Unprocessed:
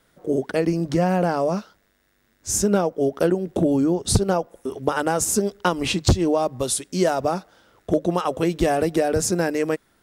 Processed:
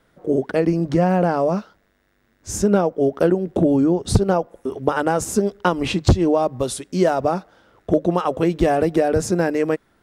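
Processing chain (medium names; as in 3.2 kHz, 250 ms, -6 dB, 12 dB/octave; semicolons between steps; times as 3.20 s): treble shelf 3.6 kHz -10.5 dB; trim +3 dB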